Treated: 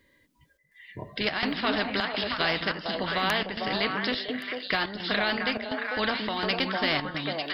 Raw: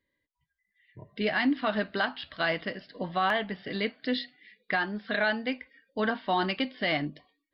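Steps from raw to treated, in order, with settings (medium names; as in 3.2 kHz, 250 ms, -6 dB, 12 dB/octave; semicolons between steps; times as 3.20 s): repeats whose band climbs or falls 224 ms, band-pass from 210 Hz, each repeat 1.4 oct, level 0 dB; square tremolo 1.4 Hz, depth 60%, duty 80%; spectrum-flattening compressor 2:1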